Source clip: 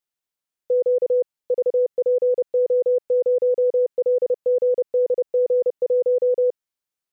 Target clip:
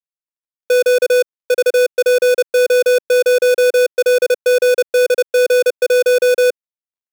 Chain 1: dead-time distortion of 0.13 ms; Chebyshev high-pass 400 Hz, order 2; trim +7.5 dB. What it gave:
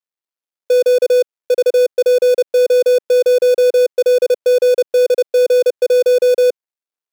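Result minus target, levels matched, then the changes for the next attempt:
dead-time distortion: distortion -10 dB
change: dead-time distortion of 0.29 ms

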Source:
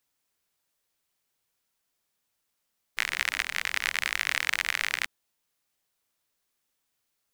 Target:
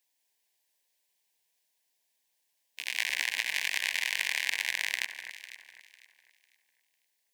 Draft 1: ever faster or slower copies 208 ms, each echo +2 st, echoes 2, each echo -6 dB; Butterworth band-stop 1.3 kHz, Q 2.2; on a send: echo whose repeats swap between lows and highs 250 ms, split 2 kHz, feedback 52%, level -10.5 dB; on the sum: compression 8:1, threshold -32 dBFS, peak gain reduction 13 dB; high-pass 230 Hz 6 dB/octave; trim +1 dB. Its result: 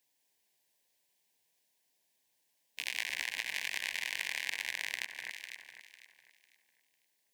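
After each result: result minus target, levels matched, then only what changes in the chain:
compression: peak gain reduction +6.5 dB; 250 Hz band +6.5 dB
change: compression 8:1, threshold -24.5 dBFS, peak gain reduction 6.5 dB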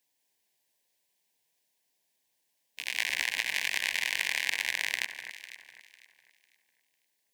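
250 Hz band +6.0 dB
change: high-pass 700 Hz 6 dB/octave

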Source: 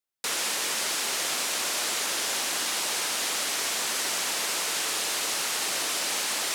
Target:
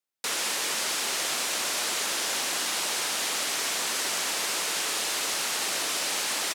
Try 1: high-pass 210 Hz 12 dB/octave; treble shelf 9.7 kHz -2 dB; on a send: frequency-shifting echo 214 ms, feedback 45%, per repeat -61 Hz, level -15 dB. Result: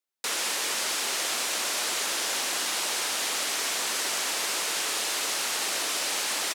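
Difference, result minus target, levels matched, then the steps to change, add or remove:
125 Hz band -4.5 dB
change: high-pass 94 Hz 12 dB/octave

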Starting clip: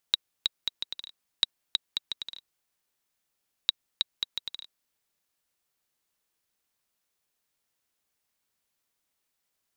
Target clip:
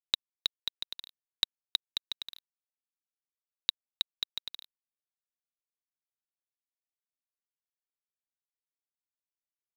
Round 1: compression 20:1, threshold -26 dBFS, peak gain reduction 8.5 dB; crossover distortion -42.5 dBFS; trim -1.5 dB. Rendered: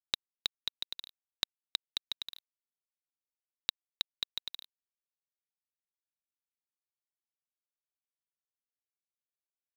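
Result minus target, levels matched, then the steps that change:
compression: peak gain reduction +6 dB
change: compression 20:1, threshold -19.5 dBFS, peak gain reduction 2.5 dB

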